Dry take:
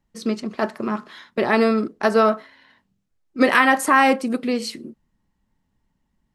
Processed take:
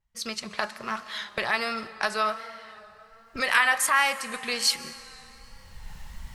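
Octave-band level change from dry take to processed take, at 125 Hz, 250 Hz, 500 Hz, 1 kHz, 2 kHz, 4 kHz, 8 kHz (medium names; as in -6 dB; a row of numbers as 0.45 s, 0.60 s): no reading, -19.5 dB, -14.0 dB, -7.5 dB, -3.0 dB, +3.0 dB, +4.5 dB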